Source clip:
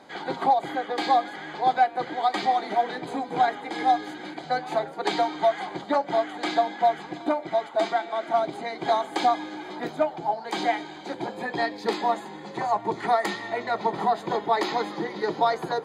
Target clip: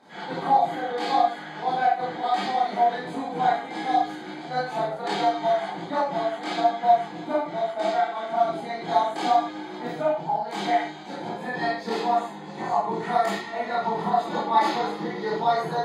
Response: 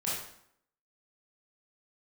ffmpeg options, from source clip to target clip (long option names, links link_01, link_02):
-filter_complex "[0:a]asettb=1/sr,asplit=3[link_01][link_02][link_03];[link_01]atrim=end=14.164[link_04];[link_02]atrim=start=14.16:end=14.66,asetpts=PTS-STARTPTS,afade=type=in:duration=0.004:curve=qsin,afade=type=out:start_time=0.496:duration=0.004:curve=qsin,aecho=1:1:3.5:0.68,atrim=end_sample=22050[link_05];[link_03]atrim=start=14.656[link_06];[link_04][link_05]acrossfade=duration=0.004:curve1=hsin:curve2=qsin[link_07];[link_07][link_06]acrossfade=duration=0.004:curve1=qsin:curve2=hsin[link_08];[1:a]atrim=start_sample=2205,afade=type=out:start_time=0.22:duration=0.01,atrim=end_sample=10143,asetrate=48510,aresample=44100[link_09];[link_08][link_09]afir=irnorm=-1:irlink=0,volume=-4.5dB"